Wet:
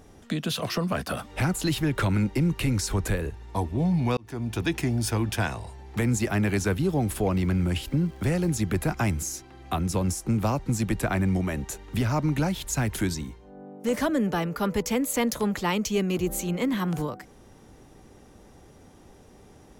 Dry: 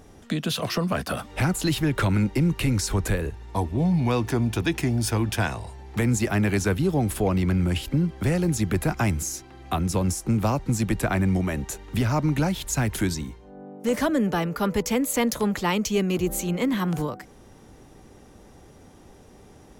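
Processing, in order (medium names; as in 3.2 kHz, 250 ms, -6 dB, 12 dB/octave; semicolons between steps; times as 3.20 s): 4.17–4.64 s: fade in; 6.63–8.60 s: crackle 390 per s -46 dBFS; trim -2 dB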